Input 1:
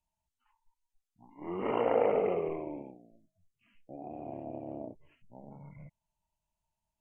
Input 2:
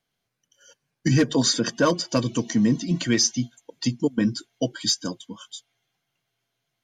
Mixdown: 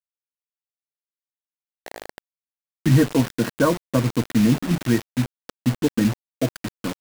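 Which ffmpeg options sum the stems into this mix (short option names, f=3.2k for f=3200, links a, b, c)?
-filter_complex "[0:a]bandpass=f=640:t=q:w=5.3:csg=0,volume=-5dB[a];[1:a]lowpass=f=1.9k:w=0.5412,lowpass=f=1.9k:w=1.3066,equalizer=f=180:w=4.2:g=-3,acrusher=bits=4:mode=log:mix=0:aa=0.000001,adelay=1800,volume=0.5dB[b];[a][b]amix=inputs=2:normalize=0,lowshelf=f=130:g=10.5,acrusher=bits=4:mix=0:aa=0.000001"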